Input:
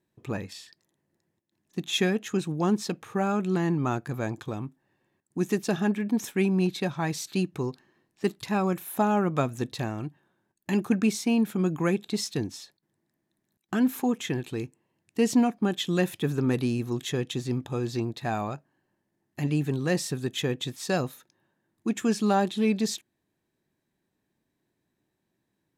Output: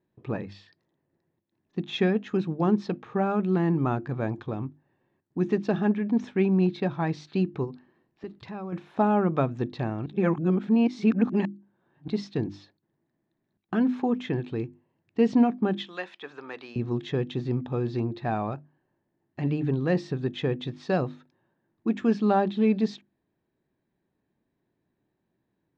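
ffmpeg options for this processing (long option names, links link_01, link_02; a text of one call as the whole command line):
ffmpeg -i in.wav -filter_complex "[0:a]asplit=3[link_01][link_02][link_03];[link_01]afade=type=out:start_time=7.64:duration=0.02[link_04];[link_02]acompressor=threshold=-38dB:ratio=3:attack=3.2:release=140:knee=1:detection=peak,afade=type=in:start_time=7.64:duration=0.02,afade=type=out:start_time=8.72:duration=0.02[link_05];[link_03]afade=type=in:start_time=8.72:duration=0.02[link_06];[link_04][link_05][link_06]amix=inputs=3:normalize=0,asettb=1/sr,asplit=3[link_07][link_08][link_09];[link_07]atrim=end=15.834[link_10];[link_08]atrim=start=15.83:end=16.76,asetpts=PTS-STARTPTS,afade=type=in:duration=0.004:curve=qsin,afade=type=out:start_time=0.926:duration=0.004:curve=qsin,highpass=930[link_11];[link_09]atrim=start=16.756[link_12];[link_10][link_11]acrossfade=duration=0.004:curve1=hsin:curve2=qsin[link_13];[link_13][link_12]acrossfade=duration=0.004:curve1=qsin:curve2=hsin,asplit=3[link_14][link_15][link_16];[link_14]atrim=end=10.062[link_17];[link_15]atrim=start=10.058:end=12.082,asetpts=PTS-STARTPTS,areverse[link_18];[link_16]atrim=start=12.078[link_19];[link_17][link_18]acrossfade=duration=0.004:curve1=hsin:curve2=hsin[link_20];[link_20][link_19]acrossfade=duration=0.004:curve1=hsin:curve2=hsin,lowpass=frequency=4700:width=0.5412,lowpass=frequency=4700:width=1.3066,highshelf=frequency=2100:gain=-11.5,bandreject=frequency=50:width_type=h:width=6,bandreject=frequency=100:width_type=h:width=6,bandreject=frequency=150:width_type=h:width=6,bandreject=frequency=200:width_type=h:width=6,bandreject=frequency=250:width_type=h:width=6,bandreject=frequency=300:width_type=h:width=6,bandreject=frequency=350:width_type=h:width=6,volume=2.5dB" out.wav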